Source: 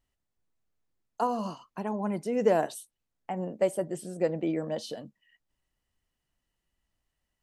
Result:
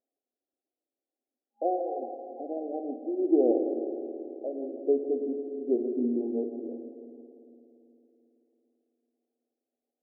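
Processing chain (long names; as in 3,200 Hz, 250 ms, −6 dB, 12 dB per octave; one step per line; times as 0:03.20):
echo with a time of its own for lows and highs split 400 Hz, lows 218 ms, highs 117 ms, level −10.5 dB
brick-wall band-pass 310–1,100 Hz
spring reverb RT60 2.6 s, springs 40 ms, chirp 30 ms, DRR 6.5 dB
wrong playback speed 45 rpm record played at 33 rpm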